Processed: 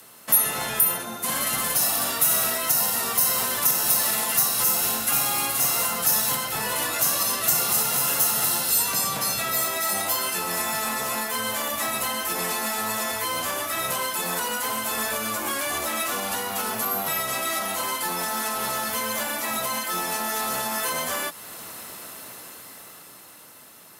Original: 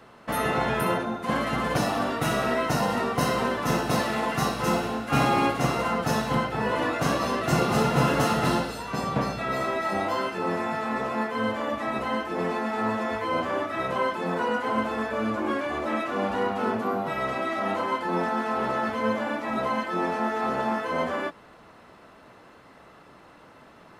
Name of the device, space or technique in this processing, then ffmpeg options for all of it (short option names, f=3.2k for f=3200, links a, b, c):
FM broadcast chain: -filter_complex "[0:a]highpass=77,dynaudnorm=f=290:g=13:m=11.5dB,acrossover=split=170|580|1400|2800[a][b][c][d][e];[a]acompressor=threshold=-31dB:ratio=4[f];[b]acompressor=threshold=-33dB:ratio=4[g];[c]acompressor=threshold=-21dB:ratio=4[h];[d]acompressor=threshold=-31dB:ratio=4[i];[e]acompressor=threshold=-33dB:ratio=4[j];[f][g][h][i][j]amix=inputs=5:normalize=0,aemphasis=mode=production:type=75fm,alimiter=limit=-16.5dB:level=0:latency=1:release=370,asoftclip=type=hard:threshold=-20.5dB,lowpass=f=15k:w=0.5412,lowpass=f=15k:w=1.3066,aemphasis=mode=production:type=75fm,volume=-3dB"